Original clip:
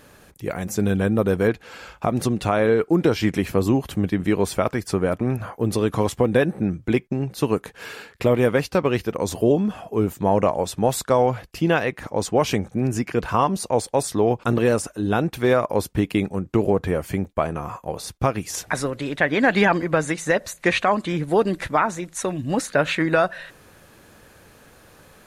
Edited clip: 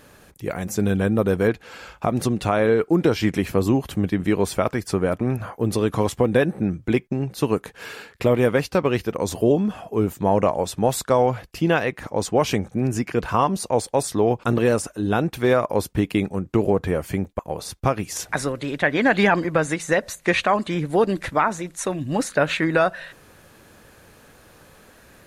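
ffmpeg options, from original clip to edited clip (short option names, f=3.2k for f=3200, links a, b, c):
-filter_complex "[0:a]asplit=2[a][b];[a]atrim=end=17.392[c];[b]atrim=start=17.768[d];[c][d]acrossfade=d=0.004:c1=hsin:c2=hsin"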